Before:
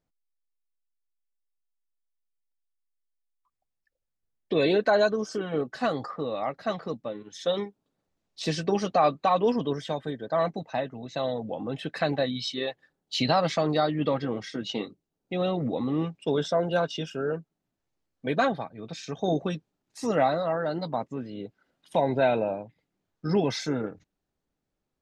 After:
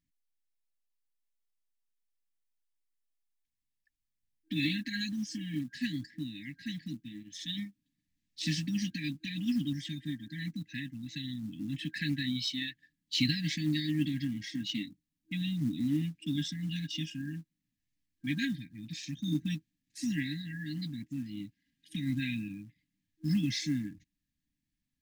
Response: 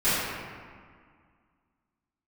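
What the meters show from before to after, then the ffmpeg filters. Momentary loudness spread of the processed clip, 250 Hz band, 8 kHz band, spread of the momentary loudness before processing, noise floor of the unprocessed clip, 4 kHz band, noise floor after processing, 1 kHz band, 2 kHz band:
11 LU, -2.0 dB, -1.0 dB, 12 LU, -83 dBFS, -1.5 dB, under -85 dBFS, under -40 dB, -5.0 dB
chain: -af "afftfilt=real='re*(1-between(b*sr/4096,320,1600))':imag='im*(1-between(b*sr/4096,320,1600))':win_size=4096:overlap=0.75,acrusher=bits=7:mode=log:mix=0:aa=0.000001,volume=-1.5dB"

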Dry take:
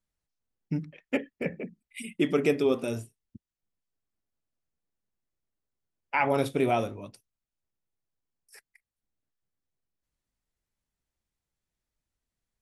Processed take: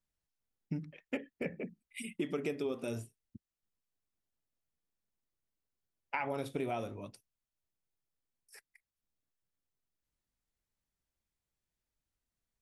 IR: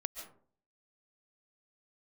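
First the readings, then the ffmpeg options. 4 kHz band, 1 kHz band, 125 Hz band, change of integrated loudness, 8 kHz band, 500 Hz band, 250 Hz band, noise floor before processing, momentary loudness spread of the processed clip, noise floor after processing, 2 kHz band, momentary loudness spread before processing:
-9.5 dB, -10.5 dB, -8.5 dB, -10.5 dB, -6.0 dB, -11.0 dB, -9.5 dB, under -85 dBFS, 16 LU, under -85 dBFS, -9.5 dB, 16 LU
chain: -af "acompressor=threshold=-29dB:ratio=6,volume=-3.5dB"

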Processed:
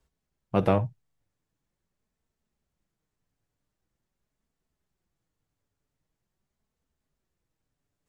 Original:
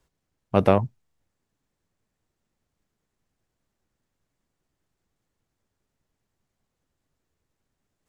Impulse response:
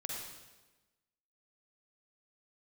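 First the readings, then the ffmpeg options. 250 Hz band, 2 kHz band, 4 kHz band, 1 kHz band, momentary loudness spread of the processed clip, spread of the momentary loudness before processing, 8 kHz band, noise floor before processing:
-3.5 dB, -4.5 dB, -5.0 dB, -4.5 dB, 8 LU, 10 LU, n/a, -81 dBFS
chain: -filter_complex "[0:a]flanger=delay=4.5:depth=2.5:regen=-41:speed=0.44:shape=sinusoidal,equalizer=f=69:w=0.88:g=5.5,asplit=2[a][b];[1:a]atrim=start_sample=2205,atrim=end_sample=3087[c];[b][c]afir=irnorm=-1:irlink=0,volume=-10.5dB[d];[a][d]amix=inputs=2:normalize=0,volume=-2.5dB"

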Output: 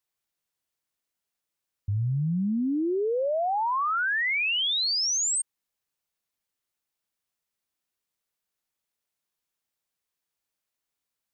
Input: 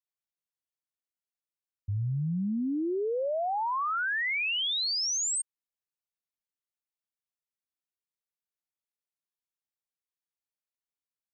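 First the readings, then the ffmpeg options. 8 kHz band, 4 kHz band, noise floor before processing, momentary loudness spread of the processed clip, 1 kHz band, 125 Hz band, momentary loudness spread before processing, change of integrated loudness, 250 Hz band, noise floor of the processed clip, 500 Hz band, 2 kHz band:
+3.5 dB, +3.5 dB, under -85 dBFS, 6 LU, +3.5 dB, +3.5 dB, 6 LU, +3.5 dB, +3.5 dB, under -85 dBFS, +3.5 dB, +3.5 dB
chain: -af "alimiter=level_in=8dB:limit=-24dB:level=0:latency=1,volume=-8dB,volume=9dB"

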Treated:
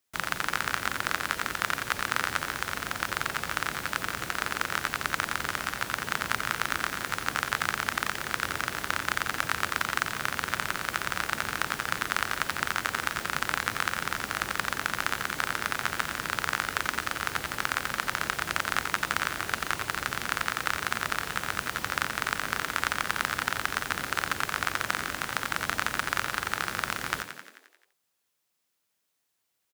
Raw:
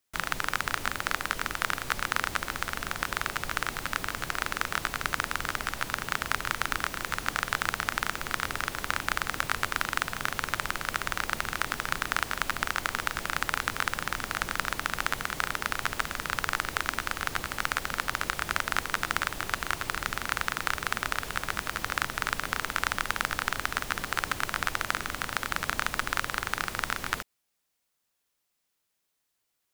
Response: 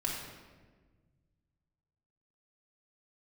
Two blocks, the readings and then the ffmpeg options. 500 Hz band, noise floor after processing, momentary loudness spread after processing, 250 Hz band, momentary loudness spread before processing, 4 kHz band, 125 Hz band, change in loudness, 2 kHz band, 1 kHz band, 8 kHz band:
+1.0 dB, -78 dBFS, 3 LU, +1.0 dB, 3 LU, +1.0 dB, 0.0 dB, +1.0 dB, +1.0 dB, +0.5 dB, +1.0 dB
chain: -filter_complex "[0:a]highpass=63,asplit=9[a][b][c][d][e][f][g][h][i];[b]adelay=88,afreqshift=41,volume=-8.5dB[j];[c]adelay=176,afreqshift=82,volume=-12.8dB[k];[d]adelay=264,afreqshift=123,volume=-17.1dB[l];[e]adelay=352,afreqshift=164,volume=-21.4dB[m];[f]adelay=440,afreqshift=205,volume=-25.7dB[n];[g]adelay=528,afreqshift=246,volume=-30dB[o];[h]adelay=616,afreqshift=287,volume=-34.3dB[p];[i]adelay=704,afreqshift=328,volume=-38.6dB[q];[a][j][k][l][m][n][o][p][q]amix=inputs=9:normalize=0"

